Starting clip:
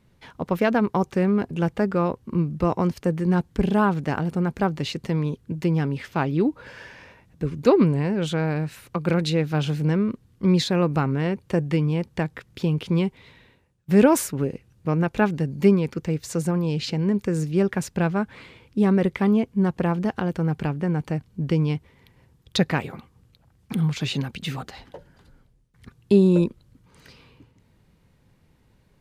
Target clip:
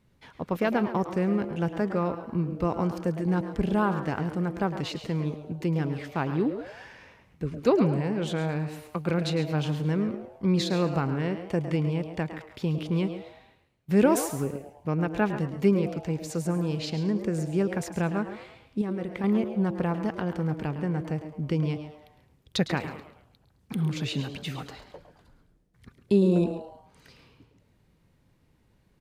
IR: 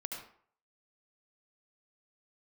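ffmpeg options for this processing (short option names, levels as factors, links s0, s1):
-filter_complex "[0:a]asplit=2[s0][s1];[s1]aecho=0:1:137:0.211[s2];[s0][s2]amix=inputs=2:normalize=0,asettb=1/sr,asplit=3[s3][s4][s5];[s3]atrim=end=18.814[s6];[s4]atrim=start=18.81:end=19.24,asetpts=PTS-STARTPTS,afade=t=in:d=0.004:c=qsin,afade=t=out:st=0.426:d=0.004:c=qsin,acompressor=threshold=0.0631:ratio=5[s7];[s5]atrim=start=19.236[s8];[s6][s7]acrossfade=d=0.004:c1=hsin:c2=qsin[s9];[s9][s8]acrossfade=d=0.004:c1=qsin:c2=hsin,asplit=2[s10][s11];[s11]asplit=4[s12][s13][s14][s15];[s12]adelay=107,afreqshift=150,volume=0.224[s16];[s13]adelay=214,afreqshift=300,volume=0.0891[s17];[s14]adelay=321,afreqshift=450,volume=0.0359[s18];[s15]adelay=428,afreqshift=600,volume=0.0143[s19];[s16][s17][s18][s19]amix=inputs=4:normalize=0[s20];[s10][s20]amix=inputs=2:normalize=0,volume=0.562"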